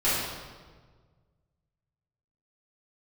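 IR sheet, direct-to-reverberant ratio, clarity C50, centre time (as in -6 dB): -12.0 dB, -1.5 dB, 96 ms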